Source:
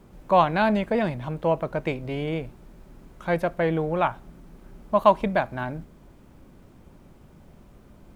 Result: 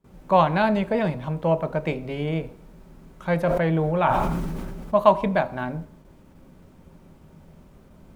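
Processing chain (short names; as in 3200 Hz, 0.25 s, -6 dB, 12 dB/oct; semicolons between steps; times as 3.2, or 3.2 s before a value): gate with hold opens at -42 dBFS; on a send at -10.5 dB: reverb RT60 0.55 s, pre-delay 3 ms; 3.4–4.94 on the sum: sustainer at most 23 dB/s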